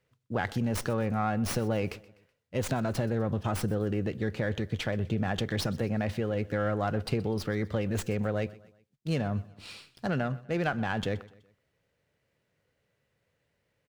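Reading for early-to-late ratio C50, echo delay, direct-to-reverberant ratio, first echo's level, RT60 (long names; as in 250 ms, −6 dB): no reverb audible, 125 ms, no reverb audible, −21.0 dB, no reverb audible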